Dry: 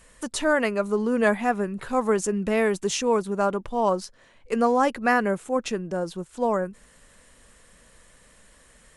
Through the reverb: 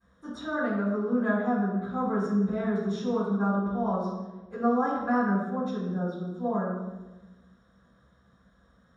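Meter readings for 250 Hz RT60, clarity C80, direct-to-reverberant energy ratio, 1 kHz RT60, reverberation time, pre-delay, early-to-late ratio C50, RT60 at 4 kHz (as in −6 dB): 1.6 s, 3.0 dB, −21.0 dB, 0.95 s, 1.1 s, 3 ms, 0.5 dB, 0.80 s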